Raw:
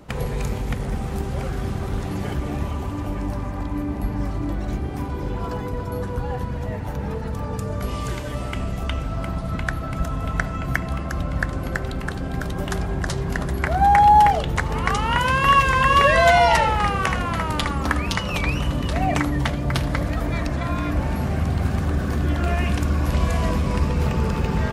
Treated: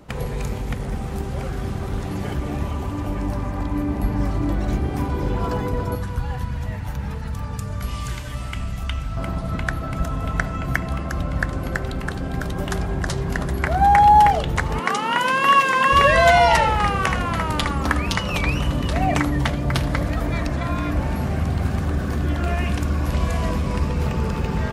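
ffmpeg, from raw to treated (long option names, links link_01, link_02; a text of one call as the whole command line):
ffmpeg -i in.wav -filter_complex "[0:a]asettb=1/sr,asplit=3[link_01][link_02][link_03];[link_01]atrim=end=5.954[link_04];[link_02]atrim=start=5.95:end=9.17,asetpts=PTS-STARTPTS,afade=type=in:duration=0.004:curve=qsin,afade=type=out:start_time=3.216:duration=0.004:curve=qsin,equalizer=frequency=430:width_type=o:width=2:gain=-12[link_05];[link_03]atrim=start=9.166[link_06];[link_04][link_05]acrossfade=duration=0.004:curve1=hsin:curve2=qsin[link_07];[link_07][link_06]acrossfade=duration=0.004:curve1=qsin:curve2=hsin,asettb=1/sr,asplit=3[link_08][link_09][link_10];[link_08]atrim=end=14.794[link_11];[link_09]atrim=start=14.79:end=15.92,asetpts=PTS-STARTPTS,afade=type=in:duration=0.004:curve=qsin,afade=type=out:start_time=1.126:duration=0.004:curve=qsin,highpass=frequency=200:width=0.5412,highpass=frequency=200:width=1.3066[link_12];[link_10]atrim=start=15.916[link_13];[link_11][link_12]acrossfade=duration=0.004:curve1=hsin:curve2=qsin[link_14];[link_14][link_13]acrossfade=duration=0.004:curve1=qsin:curve2=hsin,dynaudnorm=framelen=280:gausssize=31:maxgain=11.5dB,volume=-1dB" out.wav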